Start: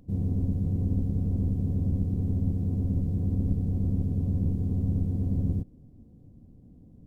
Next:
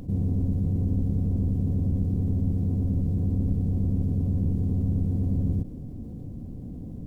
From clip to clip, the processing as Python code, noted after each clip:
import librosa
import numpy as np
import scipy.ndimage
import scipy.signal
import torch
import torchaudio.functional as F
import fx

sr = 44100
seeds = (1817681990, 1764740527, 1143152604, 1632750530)

y = fx.env_flatten(x, sr, amount_pct=50)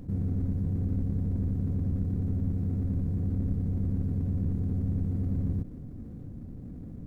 y = scipy.signal.medfilt(x, 41)
y = y * librosa.db_to_amplitude(-4.0)